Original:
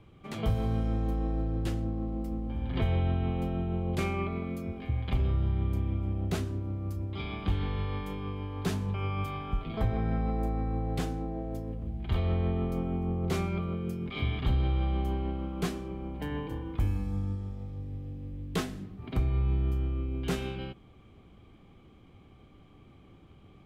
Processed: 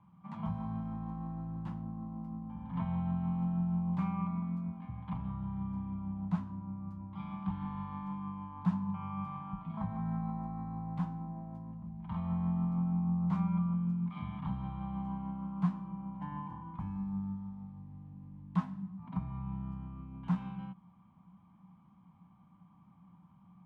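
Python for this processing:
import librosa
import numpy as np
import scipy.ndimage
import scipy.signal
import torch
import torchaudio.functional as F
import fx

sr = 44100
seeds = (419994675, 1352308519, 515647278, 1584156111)

y = fx.double_bandpass(x, sr, hz=420.0, octaves=2.4)
y = F.gain(torch.from_numpy(y), 6.0).numpy()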